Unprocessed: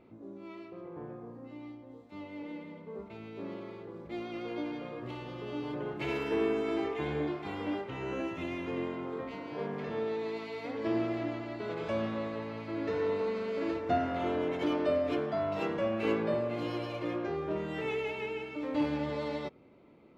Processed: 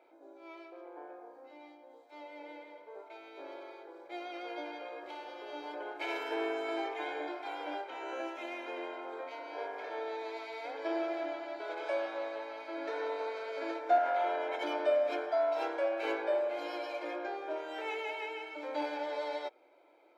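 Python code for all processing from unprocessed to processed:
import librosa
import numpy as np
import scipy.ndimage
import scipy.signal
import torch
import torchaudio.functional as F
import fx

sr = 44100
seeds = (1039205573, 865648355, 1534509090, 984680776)

y = fx.chain(x, sr, fx.highpass(hz=420.0, slope=12),
    fx.high_shelf(hz=4300.0, db=-5.5),
    fx.env_flatten(amount_pct=70), at=(13.98, 14.56))
y = scipy.signal.sosfilt(scipy.signal.ellip(4, 1.0, 40, 330.0, 'highpass', fs=sr, output='sos'), y)
y = fx.notch(y, sr, hz=2900.0, q=14.0)
y = y + 0.62 * np.pad(y, (int(1.3 * sr / 1000.0), 0))[:len(y)]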